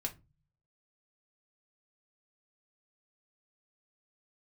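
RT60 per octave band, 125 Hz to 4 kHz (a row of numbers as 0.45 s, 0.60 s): 0.85 s, 0.50 s, 0.30 s, 0.25 s, 0.20 s, 0.20 s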